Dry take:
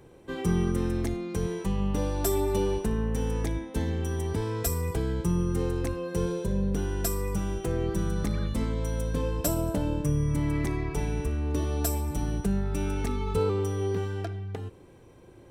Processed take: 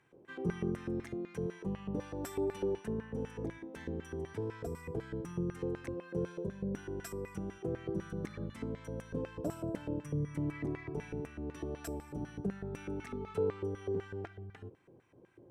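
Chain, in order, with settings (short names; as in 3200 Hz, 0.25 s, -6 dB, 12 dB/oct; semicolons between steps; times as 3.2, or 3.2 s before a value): graphic EQ 125/500/1000/2000/4000 Hz +6/-11/-4/-9/-7 dB; LFO band-pass square 4 Hz 480–1900 Hz; gain +6.5 dB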